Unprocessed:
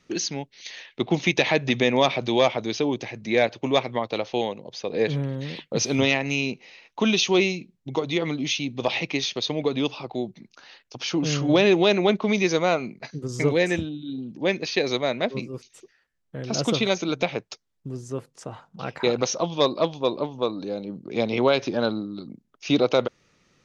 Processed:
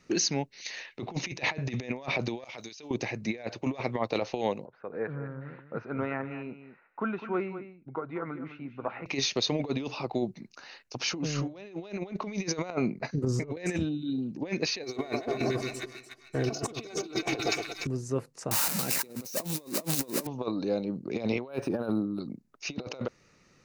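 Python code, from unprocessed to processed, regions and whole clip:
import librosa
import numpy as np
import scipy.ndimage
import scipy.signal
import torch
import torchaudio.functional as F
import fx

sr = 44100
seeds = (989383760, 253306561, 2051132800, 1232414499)

y = fx.chain(x, sr, fx.pre_emphasis(coefficient=0.9),
    fx.over_compress(threshold_db=-46.0, ratio=-1.0), at=(2.44, 2.91))
y = fx.chain(y, sr, fx.ladder_lowpass(hz=1500.0, resonance_pct=80),
    fx.echo_single(ms=206, db=-11.5), at=(4.65, 9.06))
y = fx.chain(y, sr, fx.high_shelf(hz=2200.0, db=-9.5),
    fx.over_compress(threshold_db=-29.0, ratio=-0.5), at=(12.7, 13.57))
y = fx.chain(y, sr, fx.comb(ms=2.7, depth=0.67),
    fx.echo_split(split_hz=1300.0, low_ms=116, high_ms=294, feedback_pct=52, wet_db=-9),
    fx.leveller(passes=1), at=(14.83, 17.87))
y = fx.chain(y, sr, fx.crossing_spikes(level_db=-14.0),
    fx.peak_eq(hz=240.0, db=10.5, octaves=1.5), at=(18.51, 20.27))
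y = fx.chain(y, sr, fx.peak_eq(hz=4200.0, db=-10.0, octaves=1.3),
    fx.notch(hz=2100.0, q=8.6),
    fx.resample_linear(factor=3), at=(21.48, 22.2))
y = fx.peak_eq(y, sr, hz=3300.0, db=-11.5, octaves=0.21)
y = fx.over_compress(y, sr, threshold_db=-27.0, ratio=-0.5)
y = y * 10.0 ** (-3.5 / 20.0)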